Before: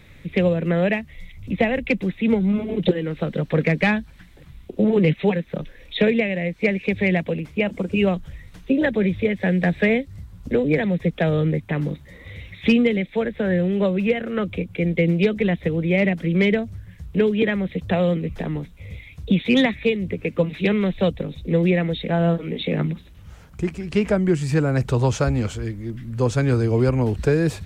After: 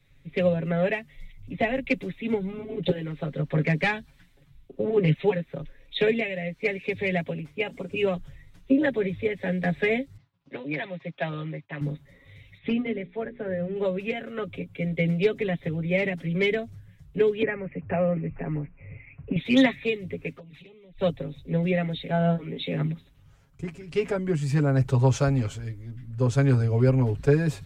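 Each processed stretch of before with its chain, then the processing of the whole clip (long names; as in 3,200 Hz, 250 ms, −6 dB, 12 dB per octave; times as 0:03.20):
0:10.17–0:11.81: downward expander −34 dBFS + loudspeaker in its box 220–5,000 Hz, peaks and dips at 240 Hz −10 dB, 440 Hz −9 dB, 1,000 Hz +3 dB, 2,600 Hz +3 dB
0:12.58–0:13.76: high-frequency loss of the air 370 metres + mains-hum notches 60/120/180/240/300/360/420/480 Hz
0:17.42–0:19.36: Butterworth low-pass 2,700 Hz 96 dB per octave + multiband upward and downward compressor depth 40%
0:20.33–0:20.99: flanger swept by the level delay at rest 7 ms, full sweep at −16 dBFS + downward compressor 16 to 1, threshold −32 dBFS
whole clip: comb filter 7.3 ms, depth 78%; multiband upward and downward expander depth 40%; level −7 dB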